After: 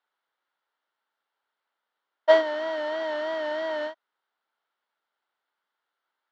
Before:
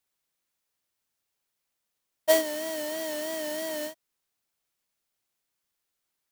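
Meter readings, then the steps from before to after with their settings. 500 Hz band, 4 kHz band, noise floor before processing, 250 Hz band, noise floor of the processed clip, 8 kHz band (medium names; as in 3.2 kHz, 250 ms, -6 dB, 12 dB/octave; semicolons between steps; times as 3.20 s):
+4.5 dB, -1.0 dB, -82 dBFS, -2.0 dB, -85 dBFS, under -20 dB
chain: cabinet simulation 430–3400 Hz, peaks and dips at 890 Hz +6 dB, 1.4 kHz +8 dB, 2.5 kHz -9 dB; trim +4.5 dB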